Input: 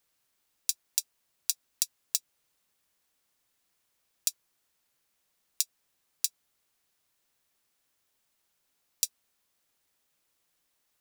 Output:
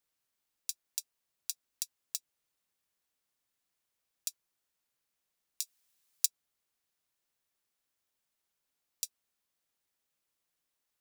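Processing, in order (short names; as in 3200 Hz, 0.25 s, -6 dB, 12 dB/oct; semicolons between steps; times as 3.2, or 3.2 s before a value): 5.62–6.26 high shelf 2100 Hz +10 dB; gain -8.5 dB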